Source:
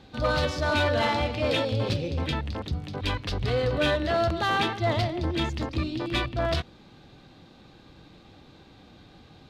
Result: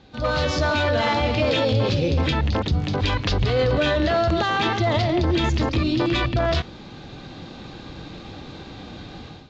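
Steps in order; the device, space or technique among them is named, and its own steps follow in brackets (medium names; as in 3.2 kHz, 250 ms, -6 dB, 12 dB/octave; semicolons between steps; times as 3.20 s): low-bitrate web radio (level rider gain up to 14 dB; peak limiter -12.5 dBFS, peak gain reduction 10 dB; AAC 48 kbps 16 kHz)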